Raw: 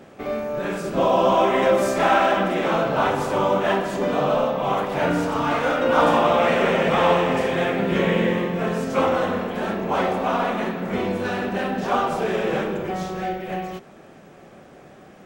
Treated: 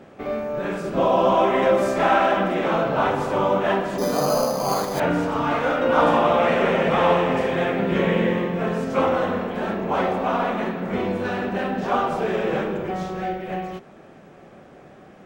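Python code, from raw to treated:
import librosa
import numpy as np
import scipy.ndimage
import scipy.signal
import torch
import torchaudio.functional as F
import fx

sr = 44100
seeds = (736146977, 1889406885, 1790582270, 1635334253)

y = fx.high_shelf(x, sr, hz=4500.0, db=-8.0)
y = fx.resample_bad(y, sr, factor=8, down='filtered', up='hold', at=(3.98, 5.0))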